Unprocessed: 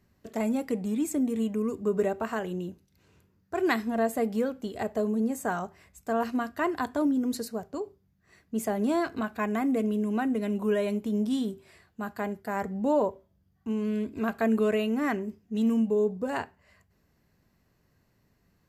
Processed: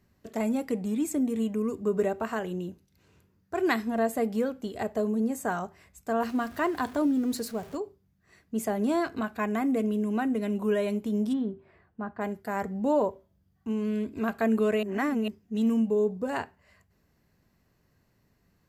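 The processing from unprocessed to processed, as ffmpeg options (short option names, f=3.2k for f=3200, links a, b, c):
-filter_complex "[0:a]asettb=1/sr,asplit=3[a][b][c];[a]atrim=end=6.234[d];[b]atrim=start=6.23:end=7.77,asetpts=PTS-STARTPTS,afade=t=in:d=0.004:c=qsin,afade=t=out:st=1.536:d=0.004:c=qsin,aeval=exprs='val(0)+0.5*0.00668*sgn(val(0))':c=same[e];[c]atrim=start=7.766[f];[d][e]acrossfade=d=0.004:c1=hsin:c2=qsin[g];[g][f]acrossfade=d=0.004:c1=qsin:c2=hsin,asplit=3[h][i][j];[h]afade=t=out:st=11.32:d=0.02[k];[i]lowpass=1.5k,afade=t=in:st=11.32:d=0.02,afade=t=out:st=12.2:d=0.02[l];[j]afade=t=in:st=12.2:d=0.02[m];[k][l][m]amix=inputs=3:normalize=0,asplit=3[n][o][p];[n]atrim=end=14.832[q];[o]atrim=start=14.828:end=15.282,asetpts=PTS-STARTPTS,areverse[r];[p]atrim=start=15.278[s];[q][r]acrossfade=d=0.004:c1=hsin:c2=hsin[t];[t][s]acrossfade=d=0.004:c1=hsin:c2=hsin"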